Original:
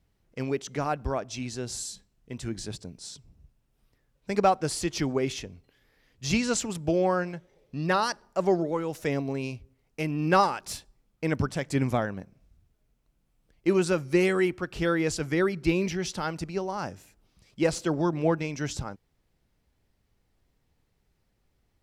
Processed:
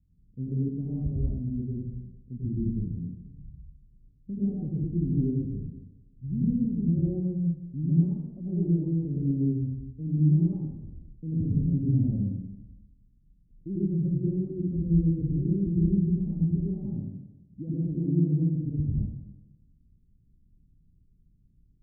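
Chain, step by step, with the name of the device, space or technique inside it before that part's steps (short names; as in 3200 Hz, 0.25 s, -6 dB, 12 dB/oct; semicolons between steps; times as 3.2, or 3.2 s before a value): 16.89–18.55 HPF 100 Hz; club heard from the street (limiter -21.5 dBFS, peak gain reduction 11.5 dB; LPF 240 Hz 24 dB/oct; reverb RT60 0.95 s, pre-delay 88 ms, DRR -6 dB); gain +2 dB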